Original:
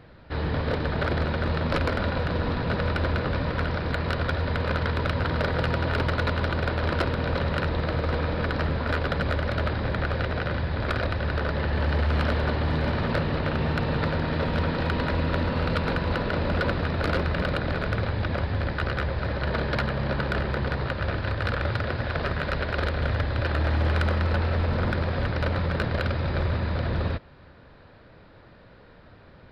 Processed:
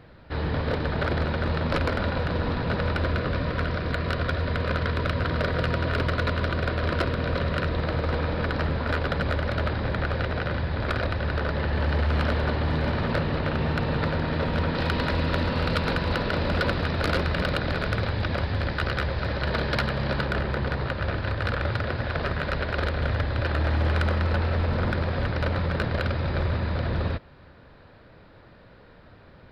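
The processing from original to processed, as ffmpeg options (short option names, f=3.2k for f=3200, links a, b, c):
-filter_complex "[0:a]asettb=1/sr,asplit=3[a][b][c];[a]atrim=end=3.024[d];[b]atrim=start=3.02:end=7.78,asetpts=PTS-STARTPTS,afade=t=in:d=0.004:c=qsin,afade=t=out:st=4.756:d=0.004:c=qsin,asuperstop=centerf=850:order=4:qfactor=5.7[e];[c]atrim=start=7.776[f];[d][e]acrossfade=d=0.004:c1=hsin:c2=qsin[g];[g][f]acrossfade=d=0.004:c1=qsin:c2=hsin,asettb=1/sr,asplit=3[h][i][j];[h]atrim=end=14.754[k];[i]atrim=start=14.75:end=20.25,asetpts=PTS-STARTPTS,afade=t=in:d=0.004:c=qsin,afade=t=out:st=5.496:d=0.004:c=qsin,highshelf=f=3.5k:g=8[l];[j]atrim=start=20.246[m];[k][l]acrossfade=d=0.004:c1=hsin:c2=qsin[n];[n][m]acrossfade=d=0.004:c1=qsin:c2=hsin"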